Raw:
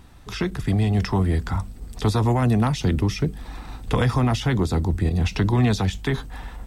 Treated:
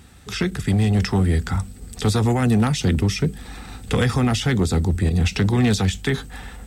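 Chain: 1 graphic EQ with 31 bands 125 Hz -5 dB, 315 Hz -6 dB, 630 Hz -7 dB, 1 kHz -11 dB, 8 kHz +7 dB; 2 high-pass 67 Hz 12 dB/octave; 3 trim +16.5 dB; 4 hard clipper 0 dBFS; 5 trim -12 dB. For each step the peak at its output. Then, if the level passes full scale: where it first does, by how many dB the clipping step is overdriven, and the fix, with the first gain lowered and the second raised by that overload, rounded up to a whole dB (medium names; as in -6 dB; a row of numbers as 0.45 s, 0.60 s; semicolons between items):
-11.0 dBFS, -11.0 dBFS, +5.5 dBFS, 0.0 dBFS, -12.0 dBFS; step 3, 5.5 dB; step 3 +10.5 dB, step 5 -6 dB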